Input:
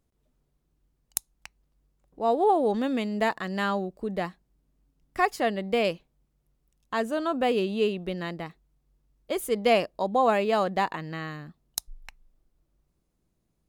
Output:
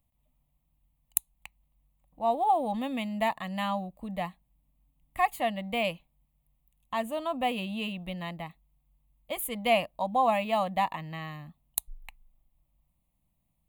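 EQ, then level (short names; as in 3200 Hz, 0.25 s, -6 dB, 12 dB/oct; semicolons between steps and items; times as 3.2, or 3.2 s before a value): high shelf 12000 Hz +11 dB; fixed phaser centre 1500 Hz, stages 6; 0.0 dB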